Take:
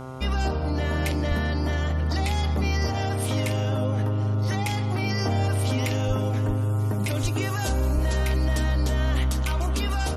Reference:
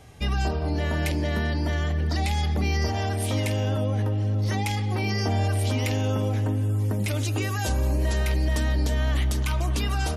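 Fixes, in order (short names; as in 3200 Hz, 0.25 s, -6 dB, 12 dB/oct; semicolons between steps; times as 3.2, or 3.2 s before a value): de-hum 130 Hz, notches 11; de-plosive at 1.28/6.07/6.47/7.22/7.94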